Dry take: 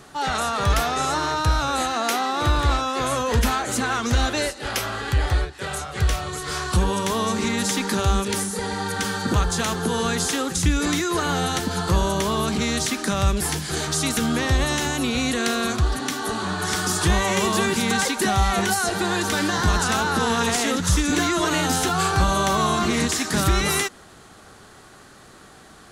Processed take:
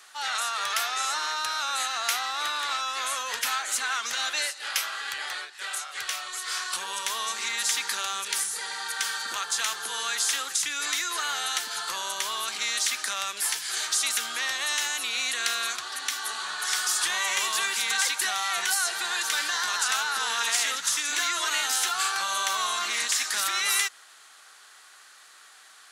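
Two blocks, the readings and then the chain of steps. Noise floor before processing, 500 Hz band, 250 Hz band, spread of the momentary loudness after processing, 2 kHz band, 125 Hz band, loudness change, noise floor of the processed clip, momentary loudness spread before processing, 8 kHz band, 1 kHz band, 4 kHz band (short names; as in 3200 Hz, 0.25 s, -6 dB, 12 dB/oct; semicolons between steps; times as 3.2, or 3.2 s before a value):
-47 dBFS, -18.5 dB, -30.5 dB, 6 LU, -2.0 dB, under -40 dB, -4.0 dB, -52 dBFS, 5 LU, 0.0 dB, -7.0 dB, 0.0 dB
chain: HPF 1500 Hz 12 dB/oct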